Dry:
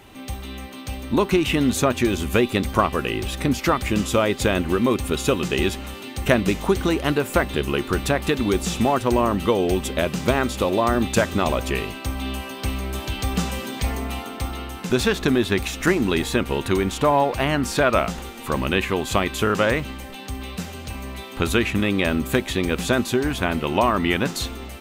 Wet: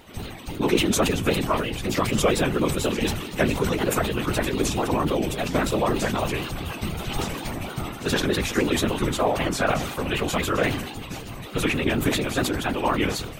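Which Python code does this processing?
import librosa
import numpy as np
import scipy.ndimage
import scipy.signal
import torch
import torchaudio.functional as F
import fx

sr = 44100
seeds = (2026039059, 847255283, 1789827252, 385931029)

y = fx.wow_flutter(x, sr, seeds[0], rate_hz=2.1, depth_cents=98.0)
y = fx.stretch_vocoder_free(y, sr, factor=0.54)
y = fx.whisperise(y, sr, seeds[1])
y = fx.sustainer(y, sr, db_per_s=58.0)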